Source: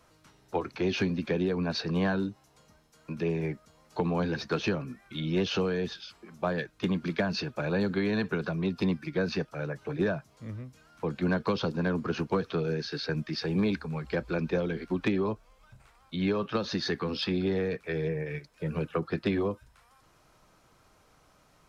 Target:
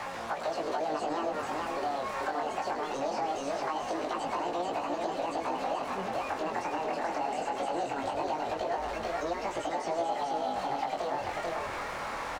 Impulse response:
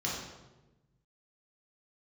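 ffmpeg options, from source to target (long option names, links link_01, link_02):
-filter_complex "[0:a]aeval=exprs='val(0)+0.5*0.0266*sgn(val(0))':channel_layout=same,acrossover=split=370 3800:gain=0.0708 1 0.0891[link_01][link_02][link_03];[link_01][link_02][link_03]amix=inputs=3:normalize=0,acrossover=split=860|3400[link_04][link_05][link_06];[link_04]acompressor=threshold=-39dB:ratio=4[link_07];[link_05]acompressor=threshold=-49dB:ratio=4[link_08];[link_06]acompressor=threshold=-50dB:ratio=4[link_09];[link_07][link_08][link_09]amix=inputs=3:normalize=0,aecho=1:1:768:0.668,asetrate=77175,aresample=44100,tiltshelf=frequency=1400:gain=8.5,asplit=2[link_10][link_11];[link_11]asplit=5[link_12][link_13][link_14][link_15][link_16];[link_12]adelay=104,afreqshift=-66,volume=-10dB[link_17];[link_13]adelay=208,afreqshift=-132,volume=-16.2dB[link_18];[link_14]adelay=312,afreqshift=-198,volume=-22.4dB[link_19];[link_15]adelay=416,afreqshift=-264,volume=-28.6dB[link_20];[link_16]adelay=520,afreqshift=-330,volume=-34.8dB[link_21];[link_17][link_18][link_19][link_20][link_21]amix=inputs=5:normalize=0[link_22];[link_10][link_22]amix=inputs=2:normalize=0,acompressor=threshold=-33dB:ratio=6,flanger=delay=17:depth=7.2:speed=0.21,volume=8dB"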